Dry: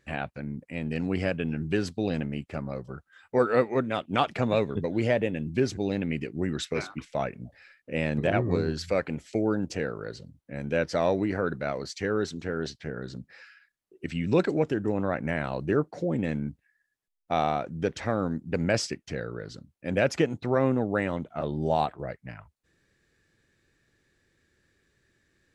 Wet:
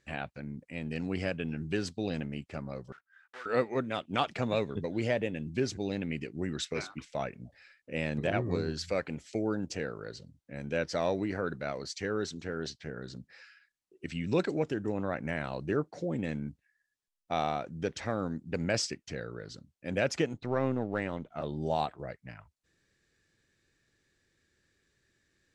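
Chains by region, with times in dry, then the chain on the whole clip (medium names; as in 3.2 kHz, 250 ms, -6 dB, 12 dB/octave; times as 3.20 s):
2.92–3.46 s: block-companded coder 3-bit + band-pass filter 1.6 kHz, Q 3.2 + compression 1.5:1, threshold -46 dBFS
20.33–21.32 s: partial rectifier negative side -3 dB + treble shelf 7 kHz -9.5 dB
whole clip: low-pass 7.3 kHz 12 dB/octave; treble shelf 4.7 kHz +10.5 dB; trim -5.5 dB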